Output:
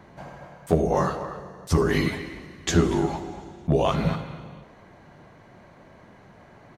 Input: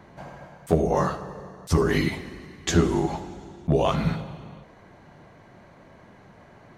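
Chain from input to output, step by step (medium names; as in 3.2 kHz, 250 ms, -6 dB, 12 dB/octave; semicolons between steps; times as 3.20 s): speakerphone echo 240 ms, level -11 dB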